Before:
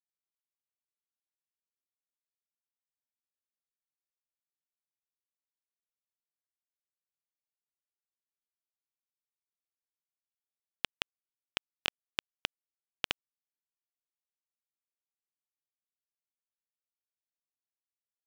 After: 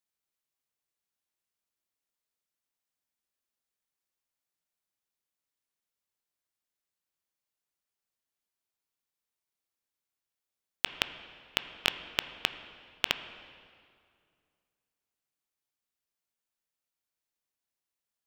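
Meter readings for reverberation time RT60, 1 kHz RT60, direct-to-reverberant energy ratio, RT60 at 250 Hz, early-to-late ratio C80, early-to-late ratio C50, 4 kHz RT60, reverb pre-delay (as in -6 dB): 2.3 s, 2.2 s, 10.0 dB, 2.5 s, 12.0 dB, 11.0 dB, 1.8 s, 12 ms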